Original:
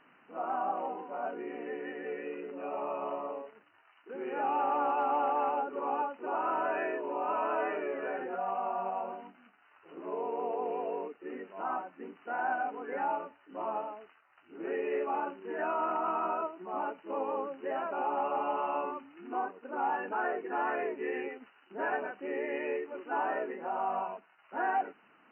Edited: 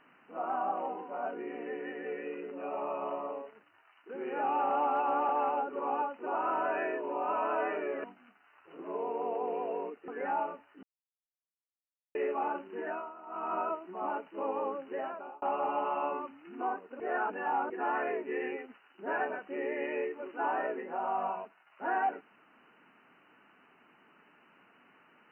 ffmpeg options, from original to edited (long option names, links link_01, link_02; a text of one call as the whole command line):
ffmpeg -i in.wav -filter_complex "[0:a]asplit=12[link_01][link_02][link_03][link_04][link_05][link_06][link_07][link_08][link_09][link_10][link_11][link_12];[link_01]atrim=end=4.702[link_13];[link_02]atrim=start=4.698:end=5.292,asetpts=PTS-STARTPTS,areverse[link_14];[link_03]atrim=start=5.288:end=8.042[link_15];[link_04]atrim=start=9.218:end=11.262[link_16];[link_05]atrim=start=12.798:end=13.55,asetpts=PTS-STARTPTS,afade=type=out:start_time=0.748:duration=0.004:curve=hsin[link_17];[link_06]atrim=start=13.55:end=14.87,asetpts=PTS-STARTPTS,volume=0[link_18];[link_07]atrim=start=14.87:end=15.84,asetpts=PTS-STARTPTS,afade=type=in:duration=0.004:curve=hsin,afade=type=out:start_time=0.63:duration=0.34:silence=0.133352[link_19];[link_08]atrim=start=15.84:end=15.97,asetpts=PTS-STARTPTS,volume=-17.5dB[link_20];[link_09]atrim=start=15.97:end=18.14,asetpts=PTS-STARTPTS,afade=type=in:duration=0.34:silence=0.133352,afade=type=out:start_time=1.64:duration=0.53[link_21];[link_10]atrim=start=18.14:end=19.722,asetpts=PTS-STARTPTS,afade=type=in:duration=0.004:curve=hsin[link_22];[link_11]atrim=start=19.718:end=20.422,asetpts=PTS-STARTPTS,areverse[link_23];[link_12]atrim=start=20.418[link_24];[link_13][link_14]acrossfade=duration=0.004:curve1=hsin:curve2=hsin[link_25];[link_25][link_15]acrossfade=duration=0.004:curve1=hsin:curve2=hsin[link_26];[link_26][link_16]acrossfade=duration=0.004:curve1=hsin:curve2=hsin[link_27];[link_17][link_18][link_19][link_20][link_21][link_22]concat=n=6:v=0:a=1[link_28];[link_27][link_28]acrossfade=duration=0.004:curve1=hsin:curve2=hsin[link_29];[link_29][link_23]acrossfade=duration=0.004:curve1=hsin:curve2=hsin[link_30];[link_30][link_24]acrossfade=duration=0.004:curve1=hsin:curve2=hsin" out.wav